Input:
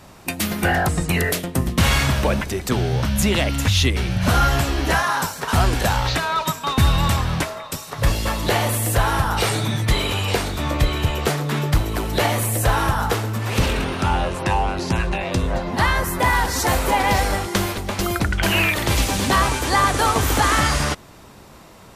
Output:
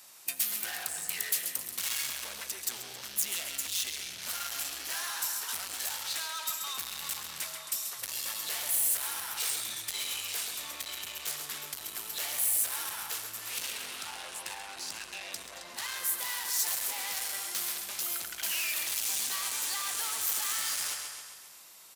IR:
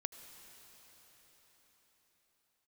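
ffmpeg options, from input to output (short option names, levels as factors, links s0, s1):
-filter_complex "[0:a]aecho=1:1:134|268|402|536|670|804:0.316|0.174|0.0957|0.0526|0.0289|0.0159,asoftclip=type=tanh:threshold=0.0708,aderivative[s0];[1:a]atrim=start_sample=2205,atrim=end_sample=6615[s1];[s0][s1]afir=irnorm=-1:irlink=0,volume=1.41"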